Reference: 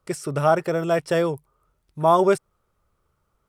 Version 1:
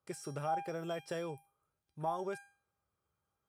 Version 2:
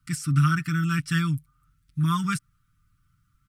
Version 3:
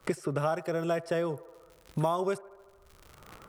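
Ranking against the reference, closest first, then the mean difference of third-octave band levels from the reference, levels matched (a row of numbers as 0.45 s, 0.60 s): 1, 3, 2; 3.5 dB, 4.5 dB, 9.5 dB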